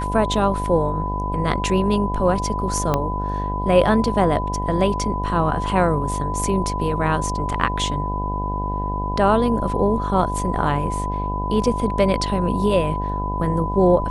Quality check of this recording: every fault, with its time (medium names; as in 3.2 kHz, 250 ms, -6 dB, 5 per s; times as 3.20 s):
buzz 50 Hz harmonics 21 -26 dBFS
whine 1 kHz -26 dBFS
2.94 s: pop -7 dBFS